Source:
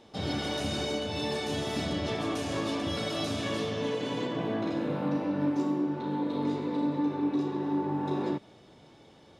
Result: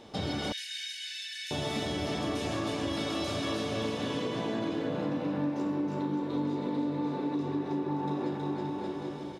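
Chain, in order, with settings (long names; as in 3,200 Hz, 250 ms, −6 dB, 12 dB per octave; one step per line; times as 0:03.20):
on a send: bouncing-ball delay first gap 320 ms, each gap 0.8×, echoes 5
on the sum: downward compressor 3 to 1, threshold −36 dBFS, peak gain reduction 11.5 dB
0:00.52–0:01.51: linear-phase brick-wall high-pass 1,500 Hz
level +4.5 dB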